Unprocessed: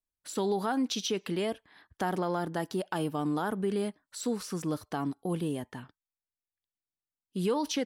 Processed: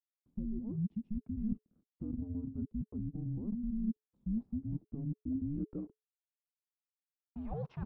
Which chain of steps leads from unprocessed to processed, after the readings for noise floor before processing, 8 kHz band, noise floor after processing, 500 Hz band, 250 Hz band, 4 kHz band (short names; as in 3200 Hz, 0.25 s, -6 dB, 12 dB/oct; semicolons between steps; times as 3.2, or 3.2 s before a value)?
under -85 dBFS, under -40 dB, under -85 dBFS, -20.0 dB, -4.5 dB, under -40 dB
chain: HPF 55 Hz; reverse; compressor 6:1, threshold -39 dBFS, peak gain reduction 13.5 dB; reverse; crossover distortion -56 dBFS; frequency shift -430 Hz; low-pass sweep 230 Hz -> 890 Hz, 4.96–7.42; gain +2 dB